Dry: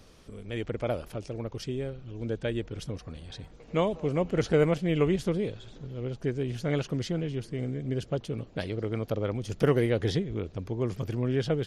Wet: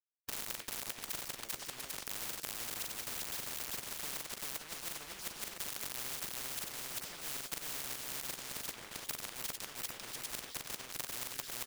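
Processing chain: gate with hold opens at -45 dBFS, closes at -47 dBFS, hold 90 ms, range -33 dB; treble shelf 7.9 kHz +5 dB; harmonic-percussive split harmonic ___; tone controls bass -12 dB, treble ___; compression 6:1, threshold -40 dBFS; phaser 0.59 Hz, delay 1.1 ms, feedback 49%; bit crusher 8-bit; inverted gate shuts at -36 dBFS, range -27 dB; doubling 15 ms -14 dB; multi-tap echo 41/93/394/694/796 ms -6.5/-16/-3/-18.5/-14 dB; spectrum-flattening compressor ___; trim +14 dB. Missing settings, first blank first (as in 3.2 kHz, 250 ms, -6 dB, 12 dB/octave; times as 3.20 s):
-12 dB, -4 dB, 10:1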